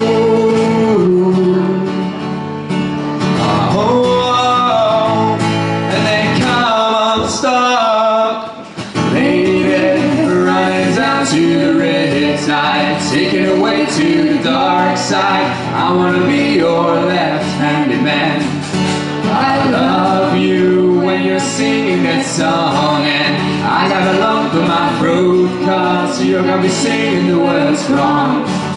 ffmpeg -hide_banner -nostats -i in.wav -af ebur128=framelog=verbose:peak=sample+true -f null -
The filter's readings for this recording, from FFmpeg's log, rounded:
Integrated loudness:
  I:         -12.9 LUFS
  Threshold: -22.9 LUFS
Loudness range:
  LRA:         1.4 LU
  Threshold: -32.9 LUFS
  LRA low:   -13.7 LUFS
  LRA high:  -12.4 LUFS
Sample peak:
  Peak:       -1.1 dBFS
True peak:
  Peak:       -1.1 dBFS